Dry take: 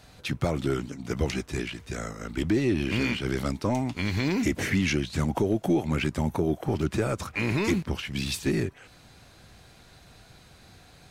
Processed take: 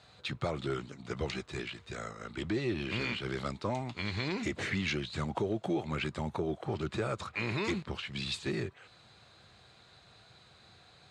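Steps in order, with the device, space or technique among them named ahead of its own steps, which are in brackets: car door speaker (speaker cabinet 97–7700 Hz, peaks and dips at 170 Hz -4 dB, 270 Hz -9 dB, 1200 Hz +4 dB, 3900 Hz +6 dB, 5800 Hz -8 dB); gain -5.5 dB

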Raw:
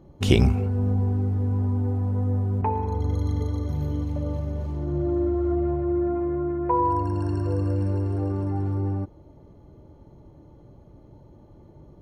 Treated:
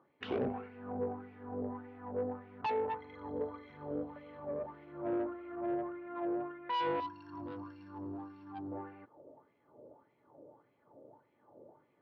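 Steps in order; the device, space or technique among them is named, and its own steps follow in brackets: wah-wah guitar rig (wah 1.7 Hz 520–2300 Hz, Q 4.3; tube stage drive 37 dB, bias 0.45; speaker cabinet 100–3900 Hz, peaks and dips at 120 Hz +5 dB, 260 Hz +7 dB, 460 Hz +5 dB); 7–8.72 EQ curve 300 Hz 0 dB, 470 Hz -19 dB, 990 Hz -3 dB, 2100 Hz -13 dB, 4900 Hz +10 dB; gain +5.5 dB

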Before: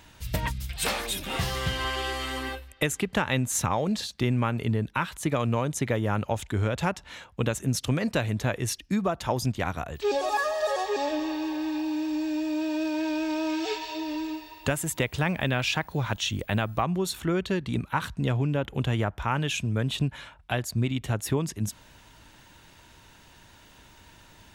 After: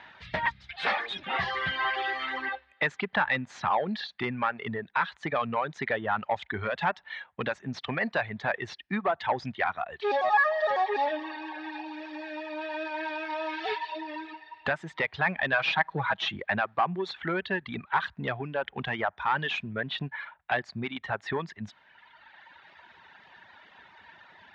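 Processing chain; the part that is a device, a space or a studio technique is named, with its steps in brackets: reverb removal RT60 1.8 s; overdrive pedal into a guitar cabinet (overdrive pedal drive 16 dB, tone 4000 Hz, clips at -12 dBFS; speaker cabinet 97–3600 Hz, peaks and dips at 120 Hz -5 dB, 300 Hz -7 dB, 490 Hz -4 dB, 790 Hz +4 dB, 1800 Hz +6 dB, 2800 Hz -5 dB); 15.52–16.36 comb 6.2 ms, depth 75%; gain -4 dB

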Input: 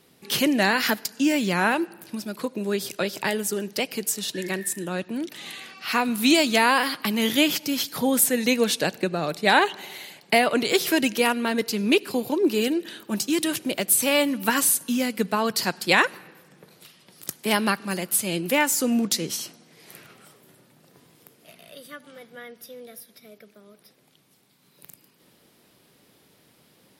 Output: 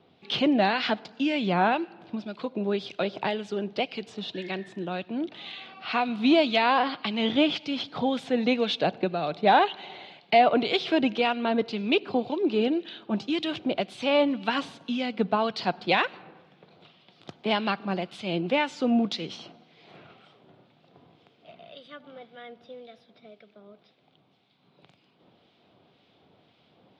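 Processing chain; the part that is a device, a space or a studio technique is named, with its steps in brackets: guitar amplifier with harmonic tremolo (harmonic tremolo 1.9 Hz, depth 50%, crossover 1600 Hz; soft clip -11 dBFS, distortion -22 dB; speaker cabinet 77–3700 Hz, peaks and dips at 90 Hz +6 dB, 720 Hz +8 dB, 1800 Hz -7 dB, 3500 Hz +4 dB)

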